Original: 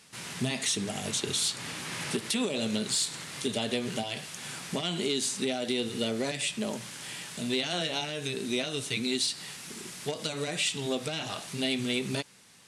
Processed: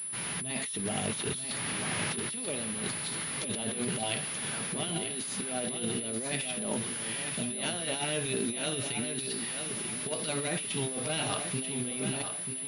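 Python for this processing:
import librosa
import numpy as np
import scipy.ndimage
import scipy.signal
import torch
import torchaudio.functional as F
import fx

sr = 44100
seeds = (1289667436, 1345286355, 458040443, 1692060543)

y = fx.over_compress(x, sr, threshold_db=-34.0, ratio=-0.5)
y = fx.echo_feedback(y, sr, ms=937, feedback_pct=33, wet_db=-7.5)
y = fx.pwm(y, sr, carrier_hz=10000.0)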